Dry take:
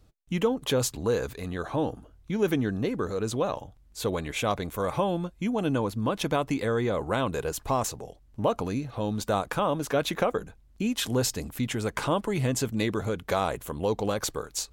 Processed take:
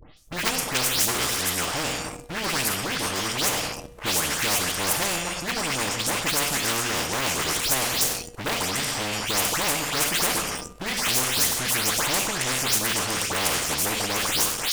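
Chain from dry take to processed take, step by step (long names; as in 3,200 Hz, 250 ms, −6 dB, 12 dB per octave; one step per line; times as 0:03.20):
every frequency bin delayed by itself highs late, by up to 170 ms
on a send at −10 dB: high-shelf EQ 7,700 Hz +7 dB + convolution reverb RT60 0.60 s, pre-delay 7 ms
on the sum: leveller curve on the samples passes 2
formants moved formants −4 semitones
low-shelf EQ 300 Hz −10 dB
hum removal 239.5 Hz, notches 13
every bin compressed towards the loudest bin 4 to 1
level +4 dB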